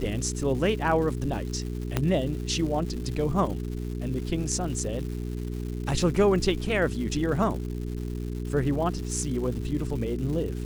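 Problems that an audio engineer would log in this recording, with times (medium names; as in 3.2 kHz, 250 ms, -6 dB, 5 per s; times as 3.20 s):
crackle 330 per s -36 dBFS
hum 60 Hz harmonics 7 -32 dBFS
1.97 s: pop -10 dBFS
6.61 s: dropout 3 ms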